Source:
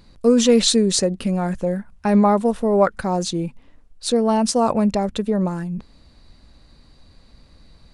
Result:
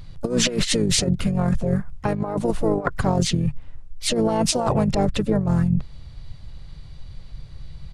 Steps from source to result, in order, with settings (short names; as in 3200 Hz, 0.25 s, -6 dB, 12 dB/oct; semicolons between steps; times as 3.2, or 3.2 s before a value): resonant low shelf 180 Hz +8.5 dB, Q 3; harmoniser -12 st -9 dB, -5 st -5 dB, +4 st -15 dB; negative-ratio compressor -18 dBFS, ratio -0.5; gain -1.5 dB